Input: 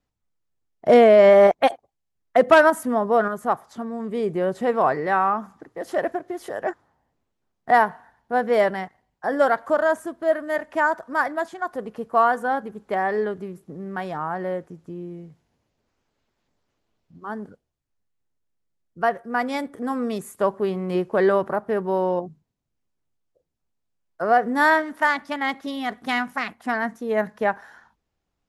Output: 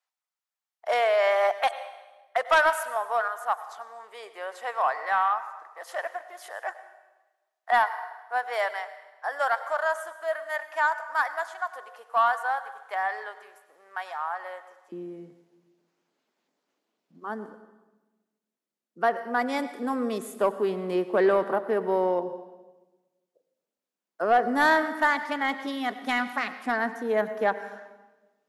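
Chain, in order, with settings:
high-pass filter 760 Hz 24 dB per octave, from 0:14.92 220 Hz
convolution reverb RT60 1.2 s, pre-delay 87 ms, DRR 12.5 dB
soft clipping −10 dBFS, distortion −20 dB
level −1.5 dB

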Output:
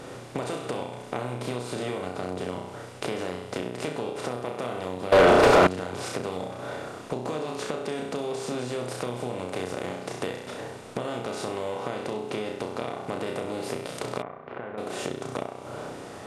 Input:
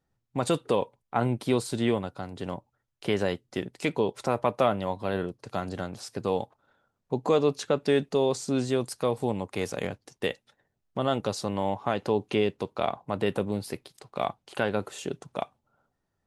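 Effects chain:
compressor on every frequency bin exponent 0.4
on a send: flutter between parallel walls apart 5.6 metres, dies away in 0.5 s
on the sum: downward compressor 12 to 1, threshold −26 dBFS, peak gain reduction 15 dB
0:05.12–0:05.67: mid-hump overdrive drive 37 dB, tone 1,400 Hz, clips at −4 dBFS
0:14.22–0:14.78: transistor ladder low-pass 2,300 Hz, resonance 25%
level −1.5 dB

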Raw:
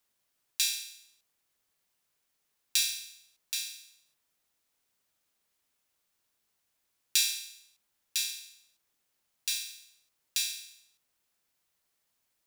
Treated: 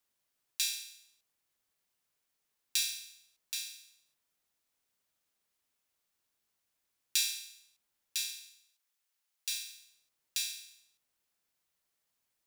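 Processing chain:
0:08.49–0:09.52: high-pass filter 1,200 Hz 6 dB per octave
level −4 dB

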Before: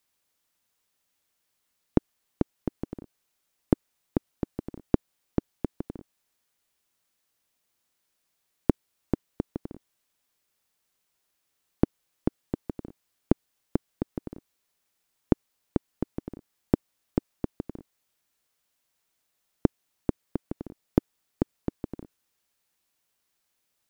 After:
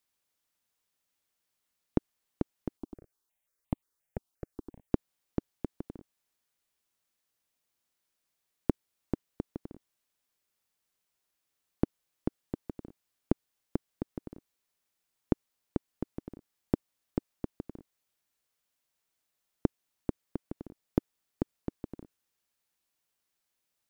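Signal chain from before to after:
0:02.77–0:04.92: step-sequenced phaser 5.7 Hz 510–1,500 Hz
level −5.5 dB

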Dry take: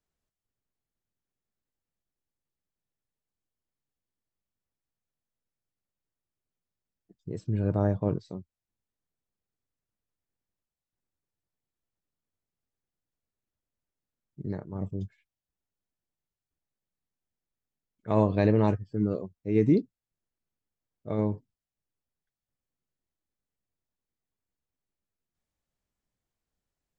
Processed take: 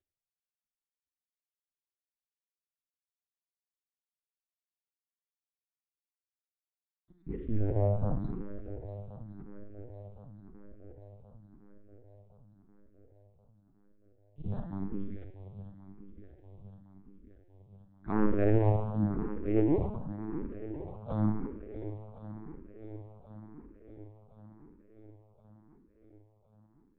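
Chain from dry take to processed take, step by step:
variable-slope delta modulation 64 kbit/s
treble cut that deepens with the level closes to 1,600 Hz, closed at −23.5 dBFS
low-shelf EQ 140 Hz +6.5 dB
soft clipping −16.5 dBFS, distortion −15 dB
0:07.77–0:08.19: high-frequency loss of the air 220 metres
feedback echo with a long and a short gap by turns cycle 1,070 ms, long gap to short 1.5 to 1, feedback 57%, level −13 dB
on a send at −3 dB: convolution reverb RT60 1.0 s, pre-delay 31 ms
on the sum: linear-prediction vocoder at 8 kHz pitch kept
frequency shifter mixed with the dry sound +0.92 Hz

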